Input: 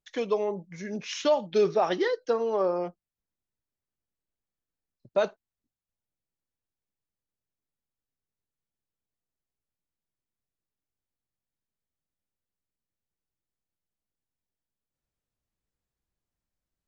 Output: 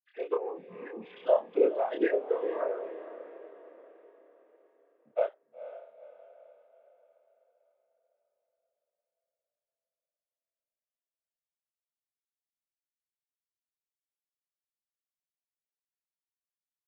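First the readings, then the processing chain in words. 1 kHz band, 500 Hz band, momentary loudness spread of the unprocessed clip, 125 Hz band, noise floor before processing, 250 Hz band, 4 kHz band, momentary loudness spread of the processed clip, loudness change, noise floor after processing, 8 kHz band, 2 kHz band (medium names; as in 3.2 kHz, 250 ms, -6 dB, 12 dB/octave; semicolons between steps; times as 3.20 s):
-5.5 dB, -2.5 dB, 11 LU, under -15 dB, under -85 dBFS, -3.5 dB, under -15 dB, 20 LU, -3.0 dB, under -85 dBFS, no reading, -5.0 dB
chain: formants replaced by sine waves; noise-vocoded speech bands 16; doubling 27 ms -4 dB; echo that smears into a reverb 484 ms, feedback 46%, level -13 dB; trim -4.5 dB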